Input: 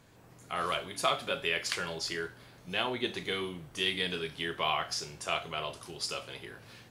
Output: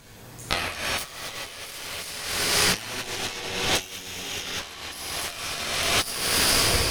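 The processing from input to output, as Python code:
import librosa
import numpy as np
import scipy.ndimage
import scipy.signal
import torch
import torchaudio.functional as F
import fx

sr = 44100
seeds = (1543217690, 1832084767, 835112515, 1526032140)

y = fx.tape_stop_end(x, sr, length_s=0.87)
y = fx.low_shelf(y, sr, hz=63.0, db=11.5)
y = fx.echo_diffused(y, sr, ms=468, feedback_pct=42, wet_db=-8)
y = fx.cheby_harmonics(y, sr, harmonics=(8,), levels_db=(-7,), full_scale_db=-13.0)
y = fx.high_shelf(y, sr, hz=2500.0, db=9.0)
y = fx.notch(y, sr, hz=7200.0, q=16.0)
y = fx.rev_plate(y, sr, seeds[0], rt60_s=3.0, hf_ratio=0.95, predelay_ms=0, drr_db=-3.5)
y = fx.over_compress(y, sr, threshold_db=-27.0, ratio=-0.5)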